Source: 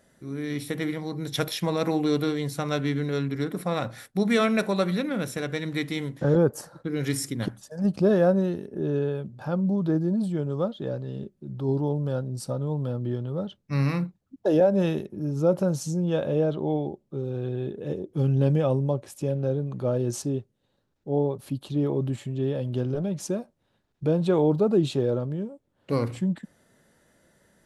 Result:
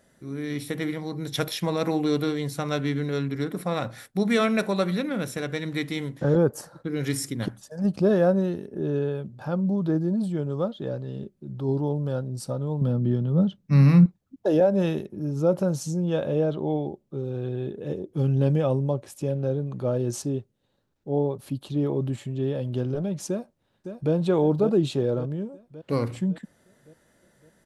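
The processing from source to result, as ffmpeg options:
ffmpeg -i in.wav -filter_complex "[0:a]asettb=1/sr,asplit=3[link_01][link_02][link_03];[link_01]atrim=end=12.814[link_04];[link_02]atrim=start=12.81:end=14.06,asetpts=PTS-STARTPTS,afade=type=in:duration=0.004:curve=qsin,afade=type=out:start_time=1.246:duration=0.004:curve=qsin,equalizer=frequency=180:width=1.5:gain=13.5[link_05];[link_03]atrim=start=14.056[link_06];[link_04][link_05]acrossfade=duration=0.004:curve1=hsin:curve2=qsin[link_07];[link_07][link_06]acrossfade=duration=0.004:curve1=qsin:curve2=hsin,asplit=2[link_08][link_09];[link_09]afade=type=in:start_time=23.28:duration=0.01,afade=type=out:start_time=24.13:duration=0.01,aecho=0:1:560|1120|1680|2240|2800|3360|3920:0.375837|0.206711|0.113691|0.0625299|0.0343915|0.0189153|0.0104034[link_10];[link_08][link_10]amix=inputs=2:normalize=0" out.wav

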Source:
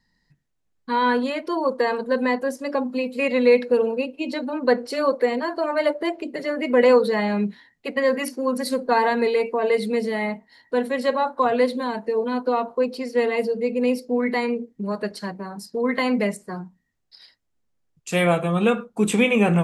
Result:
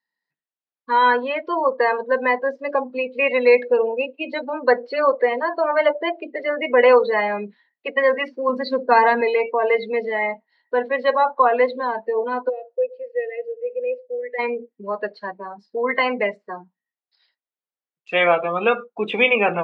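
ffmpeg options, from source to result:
ffmpeg -i in.wav -filter_complex "[0:a]asettb=1/sr,asplit=3[link_01][link_02][link_03];[link_01]atrim=end=8.494[link_04];[link_02]atrim=start=8.49:end=9.21,asetpts=PTS-STARTPTS,afade=type=in:duration=0.004:curve=qsin,afade=type=out:start_time=0.716:duration=0.004:curve=qsin,bass=frequency=250:gain=12,treble=frequency=4000:gain=2[link_05];[link_03]atrim=start=9.206[link_06];[link_04][link_05]acrossfade=duration=0.004:curve1=hsin:curve2=qsin[link_07];[link_07][link_06]acrossfade=duration=0.004:curve1=qsin:curve2=hsin,asplit=3[link_08][link_09][link_10];[link_08]afade=type=out:start_time=12.48:duration=0.02[link_11];[link_09]asplit=3[link_12][link_13][link_14];[link_12]bandpass=frequency=530:width_type=q:width=8,volume=0dB[link_15];[link_13]bandpass=frequency=1840:width_type=q:width=8,volume=-6dB[link_16];[link_14]bandpass=frequency=2480:width_type=q:width=8,volume=-9dB[link_17];[link_15][link_16][link_17]amix=inputs=3:normalize=0,afade=type=in:start_time=12.48:duration=0.02,afade=type=out:start_time=14.38:duration=0.02[link_18];[link_10]afade=type=in:start_time=14.38:duration=0.02[link_19];[link_11][link_18][link_19]amix=inputs=3:normalize=0,lowpass=frequency=4000:width=0.5412,lowpass=frequency=4000:width=1.3066,afftdn=noise_reduction=17:noise_floor=-31,highpass=550,volume=6dB" out.wav

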